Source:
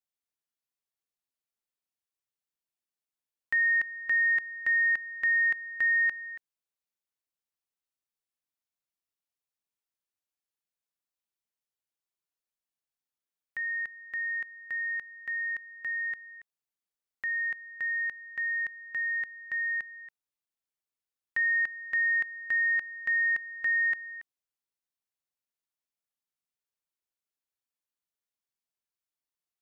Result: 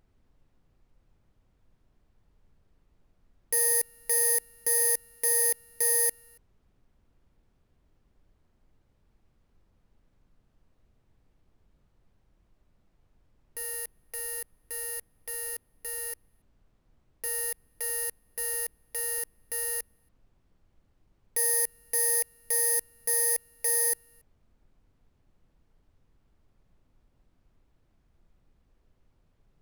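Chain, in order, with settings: bit-reversed sample order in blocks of 32 samples; peaking EQ 2.3 kHz +9.5 dB 1.8 oct; Chebyshev shaper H 7 -17 dB, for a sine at -20 dBFS; added noise brown -64 dBFS

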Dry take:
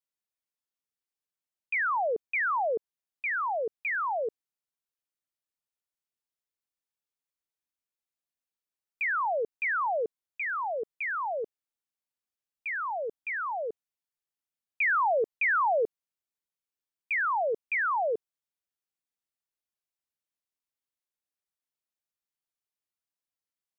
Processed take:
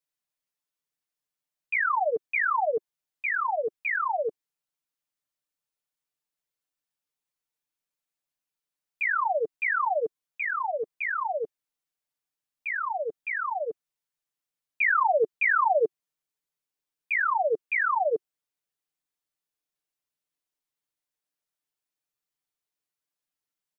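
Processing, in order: peaking EQ 370 Hz -4 dB 0.29 oct, from 14.81 s +2.5 dB; comb 6.7 ms, depth 88%

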